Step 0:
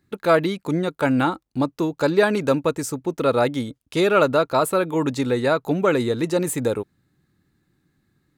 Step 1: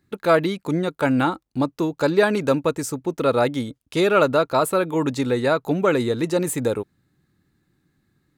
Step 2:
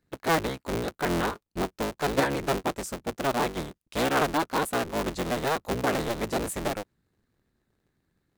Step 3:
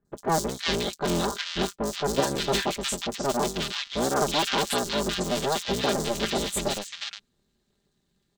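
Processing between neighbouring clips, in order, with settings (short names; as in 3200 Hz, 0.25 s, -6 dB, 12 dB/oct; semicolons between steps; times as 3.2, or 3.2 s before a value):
nothing audible
cycle switcher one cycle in 3, inverted; gain -7.5 dB
band shelf 4900 Hz +10 dB; comb 5 ms, depth 49%; three bands offset in time lows, highs, mids 50/360 ms, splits 1500/5400 Hz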